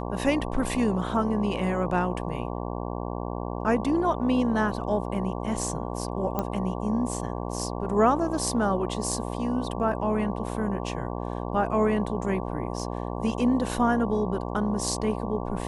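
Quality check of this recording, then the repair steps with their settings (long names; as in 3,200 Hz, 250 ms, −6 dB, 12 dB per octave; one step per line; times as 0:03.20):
mains buzz 60 Hz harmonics 19 −32 dBFS
0:06.39: click −14 dBFS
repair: click removal
hum removal 60 Hz, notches 19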